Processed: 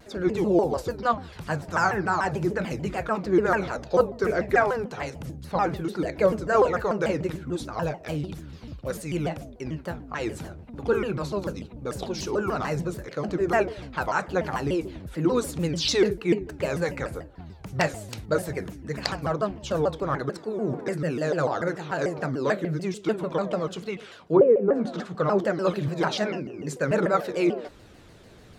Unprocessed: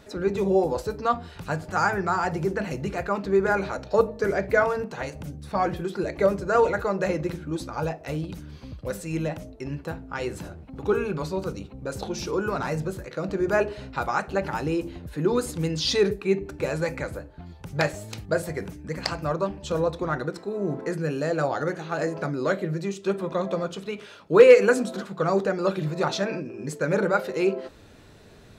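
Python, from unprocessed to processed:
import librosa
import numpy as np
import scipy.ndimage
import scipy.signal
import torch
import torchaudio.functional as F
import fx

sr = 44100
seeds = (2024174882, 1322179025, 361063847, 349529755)

y = fx.env_lowpass_down(x, sr, base_hz=380.0, full_db=-11.5, at=(23.87, 25.39))
y = fx.vibrato_shape(y, sr, shape='saw_down', rate_hz=6.8, depth_cents=250.0)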